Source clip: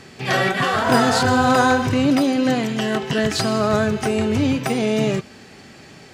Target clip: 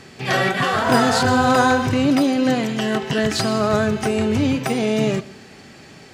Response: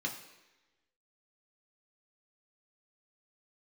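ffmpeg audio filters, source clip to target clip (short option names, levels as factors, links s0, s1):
-filter_complex "[0:a]asplit=2[s0][s1];[1:a]atrim=start_sample=2205,adelay=119[s2];[s1][s2]afir=irnorm=-1:irlink=0,volume=0.0794[s3];[s0][s3]amix=inputs=2:normalize=0"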